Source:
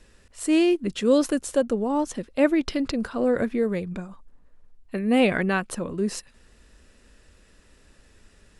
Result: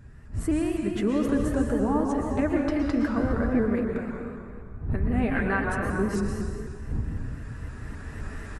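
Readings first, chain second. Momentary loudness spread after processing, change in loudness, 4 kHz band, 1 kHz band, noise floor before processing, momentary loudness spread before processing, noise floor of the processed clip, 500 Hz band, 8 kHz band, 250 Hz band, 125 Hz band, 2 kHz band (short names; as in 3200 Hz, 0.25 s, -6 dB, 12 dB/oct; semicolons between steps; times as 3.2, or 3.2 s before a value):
14 LU, -3.0 dB, under -10 dB, -0.5 dB, -57 dBFS, 12 LU, -42 dBFS, -5.0 dB, n/a, -1.0 dB, +6.5 dB, -1.0 dB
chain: recorder AGC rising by 6.4 dB/s; wind noise 93 Hz -30 dBFS; bell 530 Hz -11 dB 0.2 oct; compressor, threshold -22 dBFS, peak gain reduction 12 dB; resonant high shelf 2300 Hz -9.5 dB, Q 1.5; notch comb 180 Hz; outdoor echo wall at 71 m, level -13 dB; plate-style reverb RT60 1.9 s, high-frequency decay 0.85×, pre-delay 0.105 s, DRR 1 dB; shaped vibrato saw up 3.9 Hz, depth 100 cents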